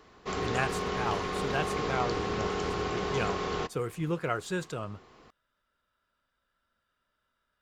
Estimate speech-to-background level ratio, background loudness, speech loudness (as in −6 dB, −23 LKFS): −2.5 dB, −32.5 LKFS, −35.0 LKFS